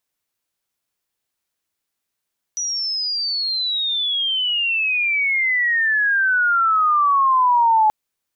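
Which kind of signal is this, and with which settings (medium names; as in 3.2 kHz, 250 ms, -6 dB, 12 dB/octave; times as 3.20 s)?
sweep logarithmic 5.9 kHz -> 850 Hz -21 dBFS -> -11.5 dBFS 5.33 s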